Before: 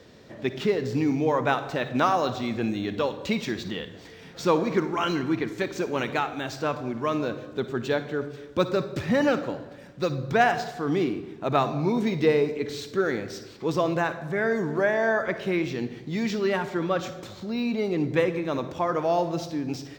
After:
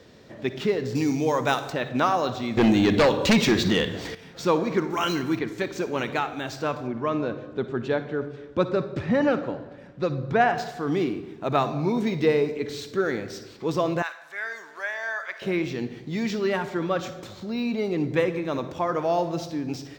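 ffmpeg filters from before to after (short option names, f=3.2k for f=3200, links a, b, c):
-filter_complex "[0:a]asettb=1/sr,asplit=3[a][b][c];[a]atrim=end=0.954[d];[b]atrim=start=0.95:end=1.7,asetpts=PTS-STARTPTS,afade=t=in:d=0.004:c=qsin,afade=t=out:st=0.746:d=0.004:c=qsin,bass=f=250:g=0,treble=f=4k:g=14[e];[c]atrim=start=1.696[f];[d][e]acrossfade=d=0.004:c1=hsin:c2=qsin[g];[g][f]acrossfade=d=0.004:c1=qsin:c2=hsin,asettb=1/sr,asplit=3[h][i][j];[h]atrim=end=2.574[k];[i]atrim=start=2.57:end=4.15,asetpts=PTS-STARTPTS,afade=t=in:d=0.004:c=qsin,afade=t=out:st=1.576:d=0.004:c=qsin,aeval=exprs='0.211*sin(PI/2*2.51*val(0)/0.211)':c=same[l];[j]atrim=start=4.146[m];[k][l]acrossfade=d=0.004:c1=hsin:c2=qsin[n];[n][m]acrossfade=d=0.004:c1=qsin:c2=hsin,asettb=1/sr,asplit=3[o][p][q];[o]atrim=end=4.904[r];[p]atrim=start=4.9:end=5.39,asetpts=PTS-STARTPTS,afade=t=in:d=0.004:c=qsin,afade=t=out:st=0.486:d=0.004:c=qsin,aemphasis=mode=production:type=50kf[s];[q]atrim=start=5.386[t];[r][s]acrossfade=d=0.004:c1=hsin:c2=qsin[u];[u][t]acrossfade=d=0.004:c1=qsin:c2=hsin,asettb=1/sr,asplit=3[v][w][x];[v]atrim=end=6.874[y];[w]atrim=start=6.87:end=10.58,asetpts=PTS-STARTPTS,afade=t=in:d=0.004:c=qsin,afade=t=out:st=3.706:d=0.004:c=qsin,aemphasis=mode=reproduction:type=75fm[z];[x]atrim=start=10.576[aa];[y][z]acrossfade=d=0.004:c1=hsin:c2=qsin[ab];[ab][aa]acrossfade=d=0.004:c1=qsin:c2=hsin,asettb=1/sr,asplit=3[ac][ad][ae];[ac]atrim=end=14.024[af];[ad]atrim=start=14.02:end=15.42,asetpts=PTS-STARTPTS,afade=t=in:d=0.004:c=qsin,afade=t=out:st=1.396:d=0.004:c=qsin,highpass=1.4k[ag];[ae]atrim=start=15.416[ah];[af][ag]acrossfade=d=0.004:c1=hsin:c2=qsin[ai];[ai][ah]acrossfade=d=0.004:c1=qsin:c2=hsin"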